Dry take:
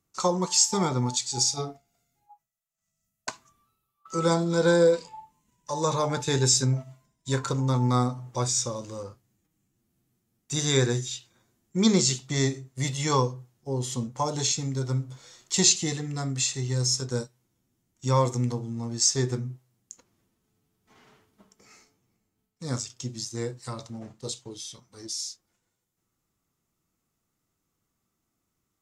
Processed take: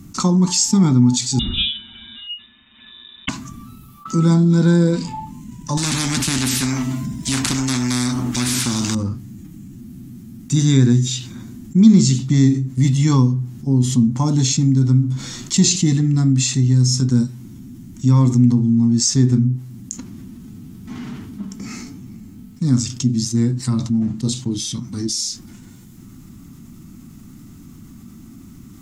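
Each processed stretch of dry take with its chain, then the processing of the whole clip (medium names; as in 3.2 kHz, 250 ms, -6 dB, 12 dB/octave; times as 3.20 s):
1.39–3.29 s: comb 7.2 ms, depth 94% + frequency inversion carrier 3.7 kHz + tape noise reduction on one side only encoder only
5.77–8.95 s: high-pass 46 Hz + spectrum-flattening compressor 10:1
whole clip: resonant low shelf 350 Hz +11.5 dB, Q 3; level flattener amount 50%; trim -7 dB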